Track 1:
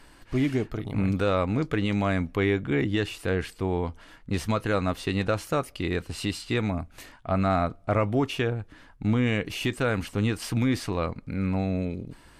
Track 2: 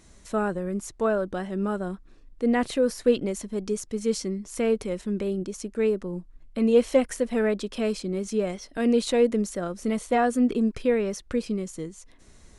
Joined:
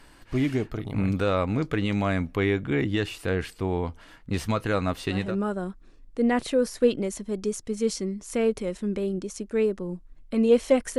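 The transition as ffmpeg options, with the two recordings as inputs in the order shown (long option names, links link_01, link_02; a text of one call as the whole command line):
ffmpeg -i cue0.wav -i cue1.wav -filter_complex "[0:a]apad=whole_dur=10.98,atrim=end=10.98,atrim=end=5.38,asetpts=PTS-STARTPTS[link_01];[1:a]atrim=start=1.3:end=7.22,asetpts=PTS-STARTPTS[link_02];[link_01][link_02]acrossfade=duration=0.32:curve1=qsin:curve2=qsin" out.wav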